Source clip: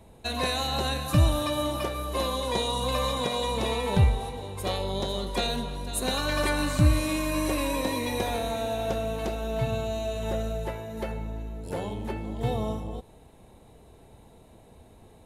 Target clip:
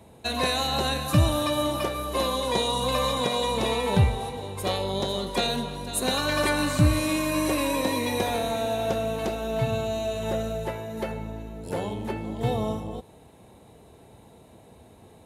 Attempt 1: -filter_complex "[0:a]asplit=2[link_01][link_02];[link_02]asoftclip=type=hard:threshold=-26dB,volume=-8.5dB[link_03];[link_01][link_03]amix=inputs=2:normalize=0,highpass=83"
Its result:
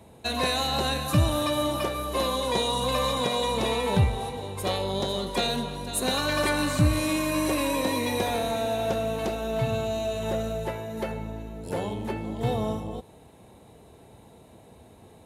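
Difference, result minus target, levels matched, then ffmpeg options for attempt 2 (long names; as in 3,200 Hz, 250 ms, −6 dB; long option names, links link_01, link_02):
hard clipping: distortion +17 dB
-filter_complex "[0:a]asplit=2[link_01][link_02];[link_02]asoftclip=type=hard:threshold=-14.5dB,volume=-8.5dB[link_03];[link_01][link_03]amix=inputs=2:normalize=0,highpass=83"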